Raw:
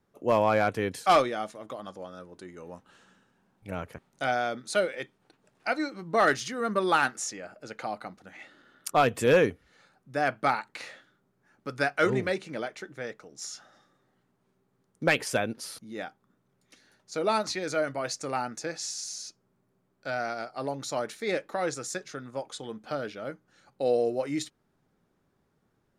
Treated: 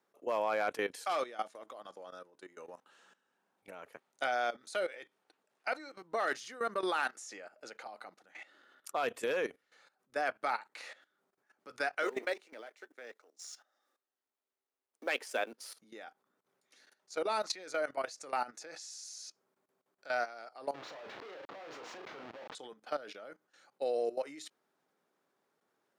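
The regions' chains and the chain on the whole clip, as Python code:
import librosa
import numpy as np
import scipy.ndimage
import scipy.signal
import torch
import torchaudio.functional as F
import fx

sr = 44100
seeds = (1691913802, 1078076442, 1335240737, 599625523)

y = fx.chain(x, sr, fx.law_mismatch(coded='A'),
    fx.ellip_highpass(hz=230.0, order=4, stop_db=40), at=(12.03, 15.77))
y = fx.chain(y, sr, fx.schmitt(flips_db=-44.5),
    fx.air_absorb(metres=240.0),
    fx.doubler(ms=35.0, db=-7.0), at=(20.74, 22.55))
y = scipy.signal.sosfilt(scipy.signal.butter(2, 430.0, 'highpass', fs=sr, output='sos'), y)
y = fx.level_steps(y, sr, step_db=16)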